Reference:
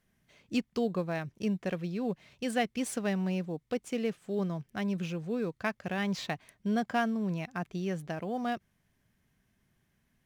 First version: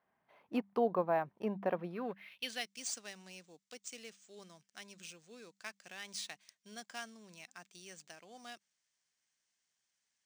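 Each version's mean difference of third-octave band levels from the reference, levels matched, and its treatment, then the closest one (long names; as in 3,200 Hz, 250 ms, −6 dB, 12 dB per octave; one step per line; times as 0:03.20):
8.0 dB: hum removal 98.71 Hz, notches 2
dynamic equaliser 250 Hz, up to +5 dB, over −41 dBFS, Q 0.72
band-pass filter sweep 880 Hz → 6,700 Hz, 0:01.85–0:02.72
linearly interpolated sample-rate reduction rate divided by 3×
level +8 dB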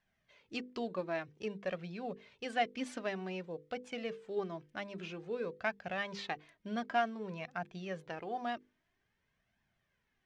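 4.5 dB: low-pass filter 4,300 Hz 12 dB per octave
low-shelf EQ 270 Hz −9.5 dB
mains-hum notches 50/100/150/200/250/300/350/400/450/500 Hz
flanger 0.52 Hz, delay 1.1 ms, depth 2.4 ms, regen +31%
level +2 dB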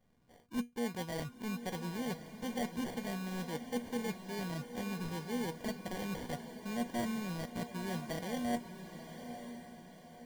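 12.0 dB: reversed playback
downward compressor, threshold −37 dBFS, peak gain reduction 13 dB
reversed playback
sample-rate reduction 1,300 Hz, jitter 0%
tuned comb filter 240 Hz, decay 0.19 s, harmonics all, mix 70%
feedback delay with all-pass diffusion 959 ms, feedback 44%, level −9.5 dB
level +8.5 dB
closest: second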